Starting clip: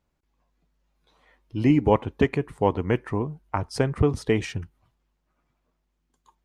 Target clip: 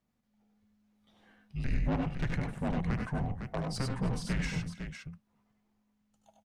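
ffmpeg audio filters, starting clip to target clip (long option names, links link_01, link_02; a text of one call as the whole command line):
ffmpeg -i in.wav -af "afreqshift=-260,asoftclip=type=tanh:threshold=-23dB,aecho=1:1:76|95|99|311|506:0.398|0.376|0.473|0.1|0.422,volume=-4.5dB" out.wav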